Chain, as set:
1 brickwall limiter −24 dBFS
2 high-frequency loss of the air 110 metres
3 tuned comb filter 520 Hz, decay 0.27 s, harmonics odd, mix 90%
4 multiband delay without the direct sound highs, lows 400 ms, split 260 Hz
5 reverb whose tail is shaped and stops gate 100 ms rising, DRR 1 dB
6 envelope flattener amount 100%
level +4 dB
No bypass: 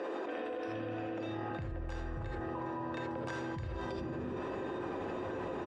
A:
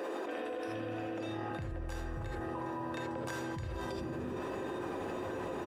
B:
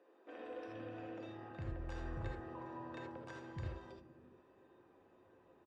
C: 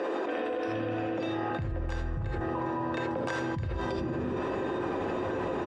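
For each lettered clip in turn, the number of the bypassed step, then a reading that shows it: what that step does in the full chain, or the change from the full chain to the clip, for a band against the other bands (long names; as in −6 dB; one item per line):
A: 2, 4 kHz band +2.5 dB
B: 6, change in crest factor +5.5 dB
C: 1, change in integrated loudness +7.0 LU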